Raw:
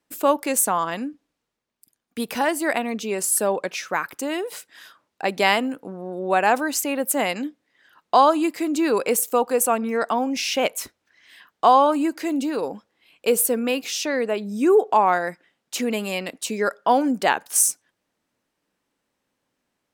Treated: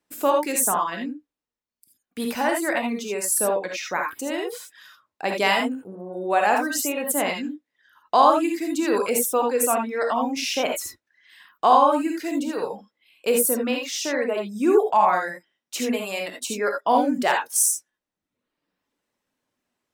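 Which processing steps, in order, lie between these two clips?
reverb removal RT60 1 s; non-linear reverb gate 0.1 s rising, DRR 1.5 dB; gain -2.5 dB

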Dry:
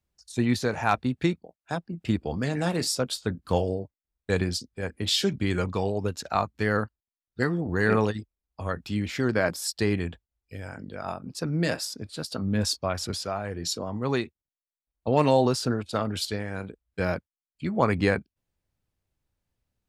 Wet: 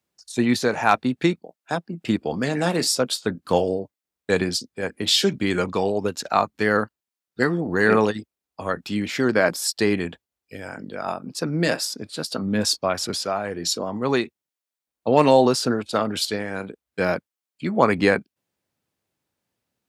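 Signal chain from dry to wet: HPF 190 Hz 12 dB/oct; gain +6 dB

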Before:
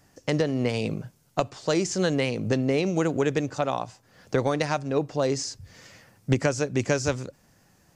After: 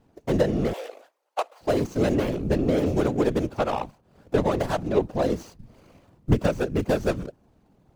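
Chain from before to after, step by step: median filter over 25 samples; whisperiser; 0.73–1.61 inverse Chebyshev high-pass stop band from 210 Hz, stop band 50 dB; gain +2 dB

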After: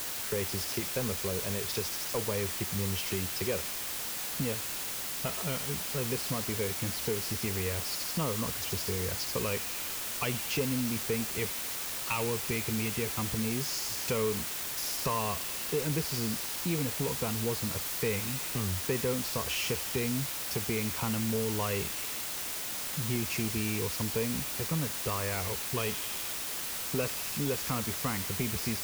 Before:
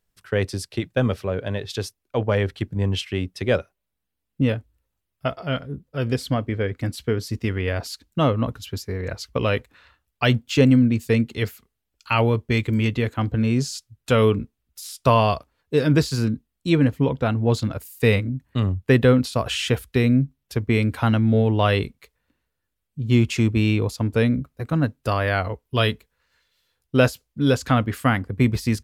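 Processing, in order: ripple EQ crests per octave 0.81, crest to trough 8 dB; on a send: thin delay 81 ms, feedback 68%, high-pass 4400 Hz, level -4 dB; on the sum: compressor 2.5:1, threshold -34 dBFS, peak gain reduction 16 dB; requantised 6-bit, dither triangular; soft clip -21.5 dBFS, distortion -20 dB

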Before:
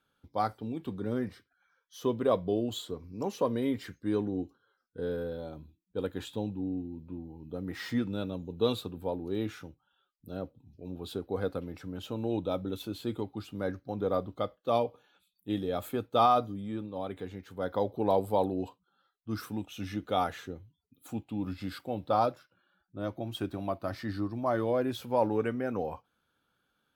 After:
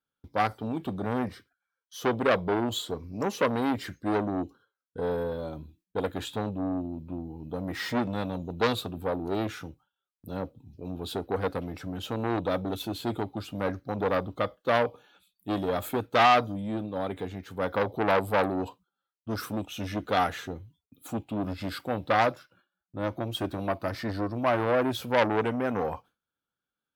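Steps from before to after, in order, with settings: gate with hold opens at -59 dBFS; core saturation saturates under 1600 Hz; gain +6.5 dB

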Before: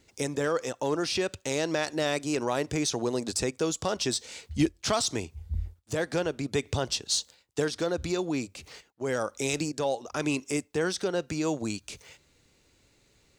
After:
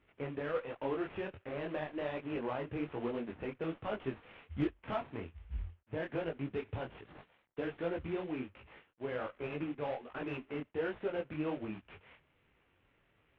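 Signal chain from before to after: CVSD 16 kbps; added harmonics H 6 -35 dB, 8 -32 dB, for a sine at -14.5 dBFS; detuned doubles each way 44 cents; gain -4 dB

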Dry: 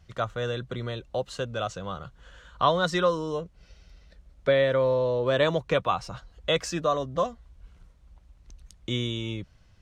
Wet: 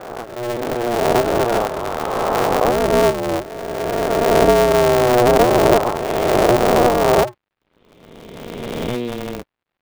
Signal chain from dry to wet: spectral swells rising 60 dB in 2.76 s; treble ducked by the level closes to 860 Hz, closed at -16.5 dBFS; HPF 380 Hz 12 dB/oct; gate with hold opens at -48 dBFS; band shelf 2000 Hz -10.5 dB 2.9 oct; AGC gain up to 15 dB; crackle 520/s -43 dBFS; crossover distortion -43 dBFS; air absorption 430 m; polarity switched at an audio rate 120 Hz

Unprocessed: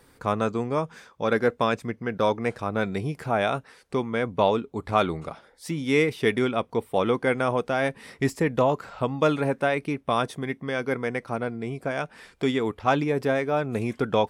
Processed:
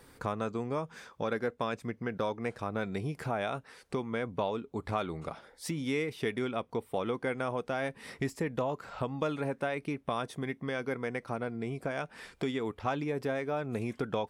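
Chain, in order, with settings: compressor 2.5:1, threshold -34 dBFS, peak gain reduction 12.5 dB

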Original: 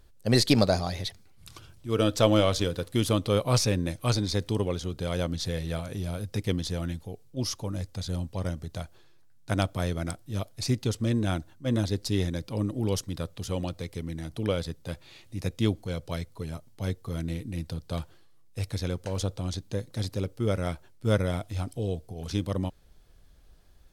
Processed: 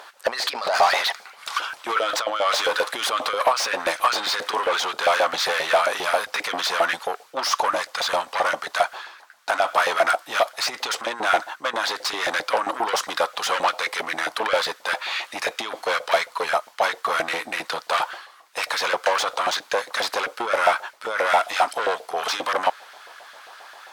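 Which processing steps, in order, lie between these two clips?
negative-ratio compressor -28 dBFS, ratio -0.5; overdrive pedal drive 30 dB, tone 2000 Hz, clips at -12.5 dBFS; LFO high-pass saw up 7.5 Hz 670–1600 Hz; gain +3 dB

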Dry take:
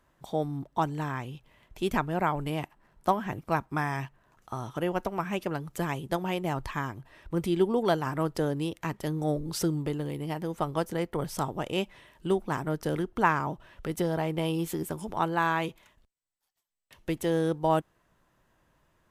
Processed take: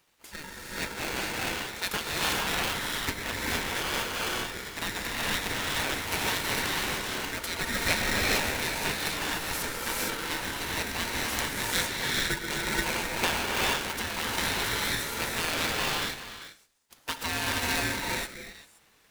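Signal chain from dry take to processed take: spectral gate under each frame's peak -15 dB weak; bell 220 Hz -9 dB 1.8 oct; delay with a stepping band-pass 0.13 s, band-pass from 400 Hz, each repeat 1.4 oct, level -5 dB; non-linear reverb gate 0.49 s rising, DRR -4 dB; in parallel at -8.5 dB: sample-and-hold 21×; on the sum: polarity switched at an audio rate 920 Hz; gain +8 dB

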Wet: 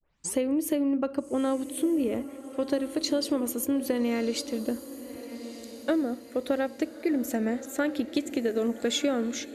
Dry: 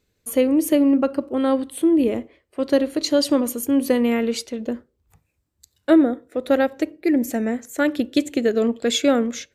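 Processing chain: tape start at the beginning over 0.36 s; compressor, threshold -21 dBFS, peak gain reduction 11 dB; diffused feedback echo 1.261 s, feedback 44%, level -13 dB; gain -2.5 dB

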